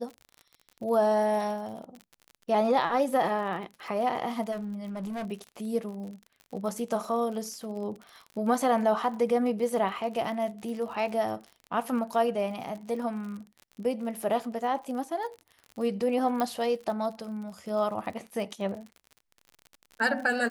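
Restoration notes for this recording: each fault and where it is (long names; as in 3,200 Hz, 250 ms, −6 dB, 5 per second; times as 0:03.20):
surface crackle 44 per second −37 dBFS
0:04.51–0:05.26: clipping −31.5 dBFS
0:16.40: click −16 dBFS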